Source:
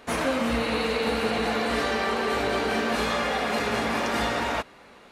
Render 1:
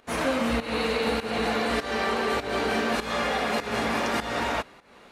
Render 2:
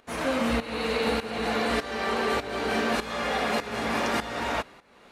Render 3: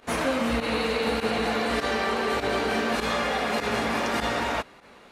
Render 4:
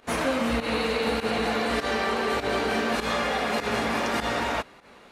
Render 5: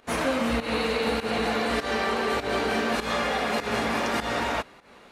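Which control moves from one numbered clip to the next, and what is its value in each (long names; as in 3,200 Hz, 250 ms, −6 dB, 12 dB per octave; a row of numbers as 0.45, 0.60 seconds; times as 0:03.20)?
fake sidechain pumping, release: 262, 528, 61, 101, 163 milliseconds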